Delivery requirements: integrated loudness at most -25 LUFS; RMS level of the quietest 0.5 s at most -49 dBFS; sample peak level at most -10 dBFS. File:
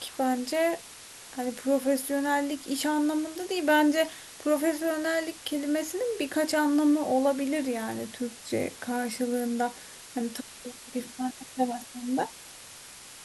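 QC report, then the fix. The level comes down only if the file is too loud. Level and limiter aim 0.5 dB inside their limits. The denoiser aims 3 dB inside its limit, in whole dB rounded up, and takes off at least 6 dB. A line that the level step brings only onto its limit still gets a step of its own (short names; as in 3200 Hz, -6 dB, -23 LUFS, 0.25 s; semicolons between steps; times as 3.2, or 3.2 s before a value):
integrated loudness -28.5 LUFS: OK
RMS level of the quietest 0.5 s -47 dBFS: fail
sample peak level -11.5 dBFS: OK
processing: denoiser 6 dB, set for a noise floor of -47 dBFS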